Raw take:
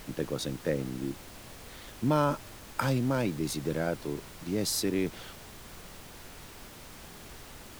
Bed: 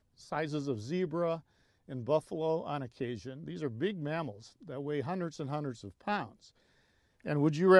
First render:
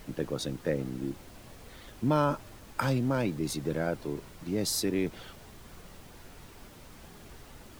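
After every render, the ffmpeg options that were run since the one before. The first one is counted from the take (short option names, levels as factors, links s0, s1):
-af "afftdn=nr=6:nf=-48"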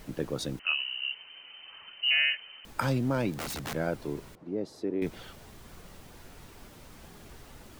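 -filter_complex "[0:a]asettb=1/sr,asplit=3[s0][s1][s2];[s0]atrim=end=0.594[s3];[s1]atrim=start=0.59:end=2.65,asetpts=PTS-STARTPTS,afade=t=in:d=0.004:c=qsin,afade=t=out:st=2.056:d=0.004:c=qsin,lowpass=f=2600:t=q:w=0.5098,lowpass=f=2600:t=q:w=0.6013,lowpass=f=2600:t=q:w=0.9,lowpass=f=2600:t=q:w=2.563,afreqshift=-3100[s4];[s2]atrim=start=2.646[s5];[s3][s4]acrossfade=d=0.004:c1=hsin:c2=qsin[s6];[s6][s5]acrossfade=d=0.004:c1=qsin:c2=hsin,asettb=1/sr,asplit=3[s7][s8][s9];[s7]atrim=end=3.324[s10];[s8]atrim=start=3.32:end=3.75,asetpts=PTS-STARTPTS,afade=t=in:d=0.004:c=qsin,afade=t=out:st=0.426:d=0.004:c=qsin,aeval=exprs='(mod(31.6*val(0)+1,2)-1)/31.6':c=same[s11];[s9]atrim=start=3.746[s12];[s10][s11]acrossfade=d=0.004:c1=hsin:c2=qsin[s13];[s13][s12]acrossfade=d=0.004:c1=qsin:c2=hsin,asettb=1/sr,asplit=3[s14][s15][s16];[s14]atrim=end=4.354[s17];[s15]atrim=start=4.35:end=5.02,asetpts=PTS-STARTPTS,afade=t=in:d=0.004:c=qsin,afade=t=out:st=0.666:d=0.004:c=qsin,bandpass=f=440:t=q:w=1[s18];[s16]atrim=start=5.016[s19];[s17][s18]acrossfade=d=0.004:c1=hsin:c2=qsin[s20];[s20][s19]acrossfade=d=0.004:c1=qsin:c2=hsin"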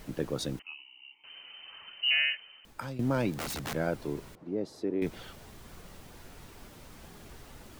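-filter_complex "[0:a]asettb=1/sr,asplit=3[s0][s1][s2];[s0]atrim=end=0.624[s3];[s1]atrim=start=0.62:end=1.24,asetpts=PTS-STARTPTS,afade=t=in:d=0.004:c=qsin,afade=t=out:st=0.616:d=0.004:c=qsin,asplit=3[s4][s5][s6];[s4]bandpass=f=300:t=q:w=8,volume=1[s7];[s5]bandpass=f=870:t=q:w=8,volume=0.501[s8];[s6]bandpass=f=2240:t=q:w=8,volume=0.355[s9];[s7][s8][s9]amix=inputs=3:normalize=0[s10];[s2]atrim=start=1.236[s11];[s3][s10]acrossfade=d=0.004:c1=hsin:c2=qsin[s12];[s12][s11]acrossfade=d=0.004:c1=qsin:c2=hsin,asplit=2[s13][s14];[s13]atrim=end=2.99,asetpts=PTS-STARTPTS,afade=t=out:st=1.97:d=1.02:silence=0.199526[s15];[s14]atrim=start=2.99,asetpts=PTS-STARTPTS,afade=t=in:d=0.004:c=hsin:silence=0.199526[s16];[s15][s16]concat=n=2:v=0:a=1"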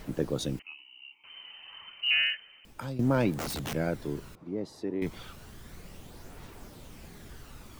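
-af "aphaser=in_gain=1:out_gain=1:delay=1.1:decay=0.33:speed=0.31:type=triangular"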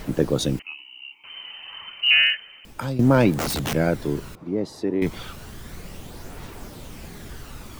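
-af "volume=2.82"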